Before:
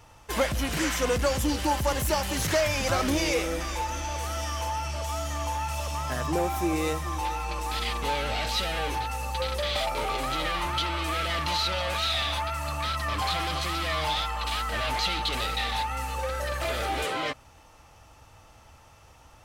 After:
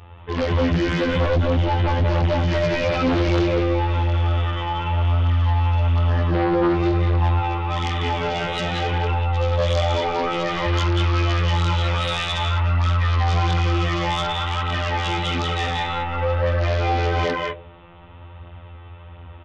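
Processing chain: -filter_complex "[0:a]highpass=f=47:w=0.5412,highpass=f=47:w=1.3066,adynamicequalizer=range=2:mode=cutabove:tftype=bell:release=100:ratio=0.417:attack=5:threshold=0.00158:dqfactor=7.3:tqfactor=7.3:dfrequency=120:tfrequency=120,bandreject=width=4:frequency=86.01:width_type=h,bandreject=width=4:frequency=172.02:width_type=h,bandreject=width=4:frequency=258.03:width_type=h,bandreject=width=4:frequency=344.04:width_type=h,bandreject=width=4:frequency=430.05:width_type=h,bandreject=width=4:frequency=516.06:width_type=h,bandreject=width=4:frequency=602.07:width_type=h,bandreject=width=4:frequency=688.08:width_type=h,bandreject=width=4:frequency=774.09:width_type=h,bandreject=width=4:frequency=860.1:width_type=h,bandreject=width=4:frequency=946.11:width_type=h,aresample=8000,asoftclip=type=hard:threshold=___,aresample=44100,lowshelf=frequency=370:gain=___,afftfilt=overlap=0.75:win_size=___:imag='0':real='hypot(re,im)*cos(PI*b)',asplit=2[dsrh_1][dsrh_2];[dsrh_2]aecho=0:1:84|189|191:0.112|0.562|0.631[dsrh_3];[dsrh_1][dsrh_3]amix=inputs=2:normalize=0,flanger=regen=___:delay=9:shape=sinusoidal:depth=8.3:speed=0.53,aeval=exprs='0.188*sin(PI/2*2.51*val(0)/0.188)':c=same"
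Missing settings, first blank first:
-24.5dB, 11.5, 2048, -32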